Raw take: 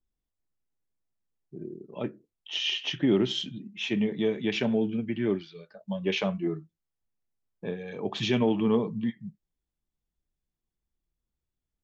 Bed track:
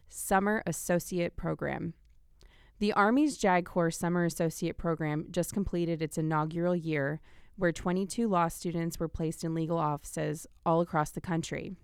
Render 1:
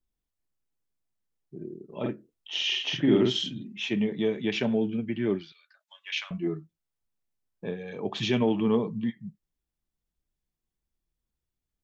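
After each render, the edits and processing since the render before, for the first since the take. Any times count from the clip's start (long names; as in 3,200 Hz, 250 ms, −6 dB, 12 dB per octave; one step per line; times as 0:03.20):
0:01.85–0:03.80: double-tracking delay 48 ms −2 dB
0:05.52–0:06.31: high-pass filter 1,400 Hz 24 dB per octave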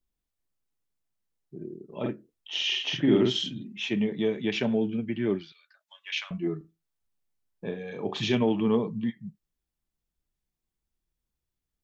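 0:06.57–0:08.35: flutter between parallel walls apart 6.3 metres, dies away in 0.22 s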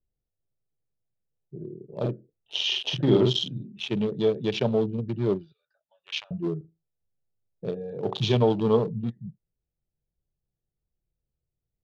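adaptive Wiener filter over 41 samples
octave-band graphic EQ 125/250/500/1,000/2,000/4,000 Hz +10/−6/+7/+6/−7/+8 dB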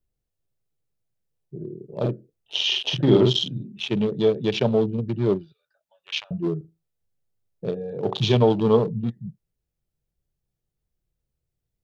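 level +3.5 dB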